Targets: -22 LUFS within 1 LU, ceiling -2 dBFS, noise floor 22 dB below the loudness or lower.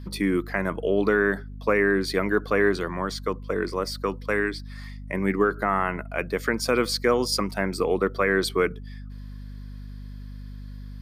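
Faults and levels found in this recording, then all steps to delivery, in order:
hum 50 Hz; highest harmonic 250 Hz; hum level -36 dBFS; loudness -25.0 LUFS; peak level -9.0 dBFS; loudness target -22.0 LUFS
-> de-hum 50 Hz, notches 5; trim +3 dB

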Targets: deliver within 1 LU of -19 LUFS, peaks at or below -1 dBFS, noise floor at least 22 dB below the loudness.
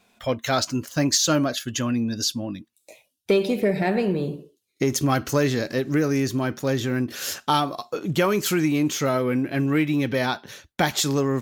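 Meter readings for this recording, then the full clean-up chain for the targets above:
loudness -23.5 LUFS; peak level -8.0 dBFS; loudness target -19.0 LUFS
-> trim +4.5 dB

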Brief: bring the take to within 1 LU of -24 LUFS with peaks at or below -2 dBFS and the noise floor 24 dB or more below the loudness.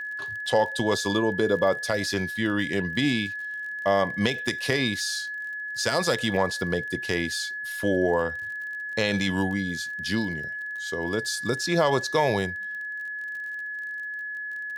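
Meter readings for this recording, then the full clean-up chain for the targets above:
tick rate 38 per s; steady tone 1.7 kHz; tone level -31 dBFS; loudness -26.5 LUFS; peak level -8.0 dBFS; loudness target -24.0 LUFS
-> de-click; band-stop 1.7 kHz, Q 30; trim +2.5 dB

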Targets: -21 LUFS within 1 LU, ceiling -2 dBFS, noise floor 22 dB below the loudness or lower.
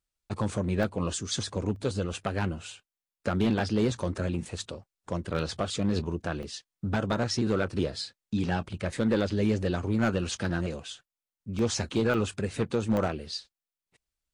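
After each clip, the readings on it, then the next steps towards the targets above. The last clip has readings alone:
clipped samples 0.6%; clipping level -18.0 dBFS; dropouts 6; longest dropout 1.7 ms; loudness -30.0 LUFS; peak level -18.0 dBFS; loudness target -21.0 LUFS
-> clip repair -18 dBFS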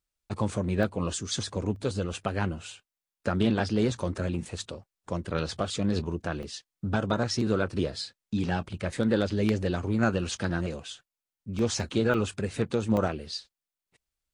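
clipped samples 0.0%; dropouts 6; longest dropout 1.7 ms
-> interpolate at 0.83/1.76/6.43/11.59/12.14/12.97 s, 1.7 ms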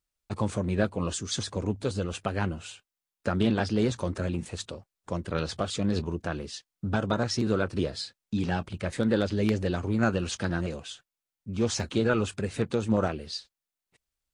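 dropouts 0; loudness -29.5 LUFS; peak level -9.0 dBFS; loudness target -21.0 LUFS
-> trim +8.5 dB; peak limiter -2 dBFS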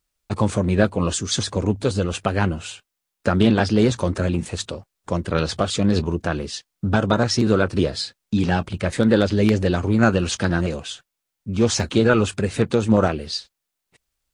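loudness -21.0 LUFS; peak level -2.0 dBFS; noise floor -81 dBFS

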